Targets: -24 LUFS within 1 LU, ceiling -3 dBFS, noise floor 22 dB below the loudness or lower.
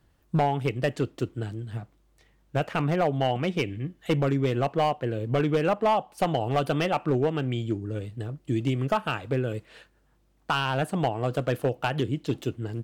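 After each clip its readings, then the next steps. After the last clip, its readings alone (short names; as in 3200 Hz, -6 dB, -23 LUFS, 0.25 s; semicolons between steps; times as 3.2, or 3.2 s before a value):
clipped 1.0%; flat tops at -17.0 dBFS; loudness -27.5 LUFS; peak -17.0 dBFS; loudness target -24.0 LUFS
-> clip repair -17 dBFS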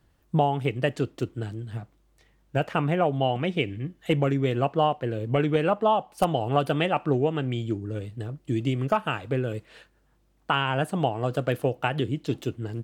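clipped 0.0%; loudness -26.5 LUFS; peak -8.5 dBFS; loudness target -24.0 LUFS
-> gain +2.5 dB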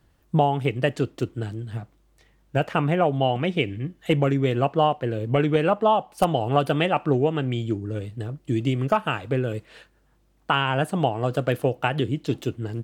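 loudness -24.0 LUFS; peak -6.0 dBFS; noise floor -63 dBFS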